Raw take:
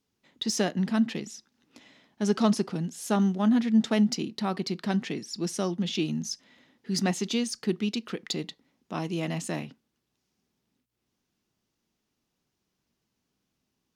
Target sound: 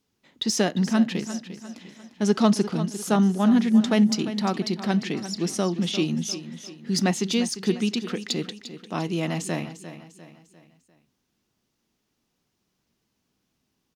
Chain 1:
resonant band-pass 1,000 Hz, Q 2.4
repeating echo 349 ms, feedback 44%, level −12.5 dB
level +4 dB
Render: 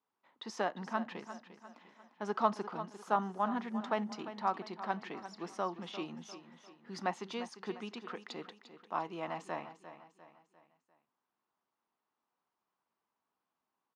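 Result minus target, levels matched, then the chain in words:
1,000 Hz band +11.5 dB
repeating echo 349 ms, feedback 44%, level −12.5 dB
level +4 dB

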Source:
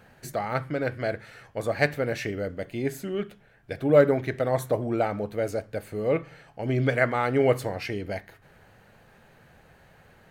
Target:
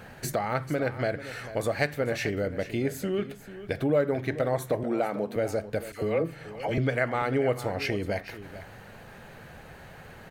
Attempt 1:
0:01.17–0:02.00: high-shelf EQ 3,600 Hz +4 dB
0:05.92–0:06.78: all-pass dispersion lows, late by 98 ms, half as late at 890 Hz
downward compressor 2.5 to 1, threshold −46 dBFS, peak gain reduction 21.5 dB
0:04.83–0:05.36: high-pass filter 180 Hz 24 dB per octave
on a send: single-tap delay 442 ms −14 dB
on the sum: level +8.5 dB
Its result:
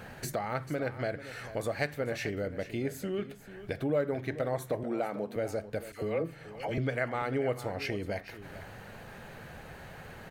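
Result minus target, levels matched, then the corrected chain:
downward compressor: peak gain reduction +5 dB
0:01.17–0:02.00: high-shelf EQ 3,600 Hz +4 dB
0:05.92–0:06.78: all-pass dispersion lows, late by 98 ms, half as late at 890 Hz
downward compressor 2.5 to 1, threshold −37.5 dBFS, peak gain reduction 16.5 dB
0:04.83–0:05.36: high-pass filter 180 Hz 24 dB per octave
on a send: single-tap delay 442 ms −14 dB
on the sum: level +8.5 dB

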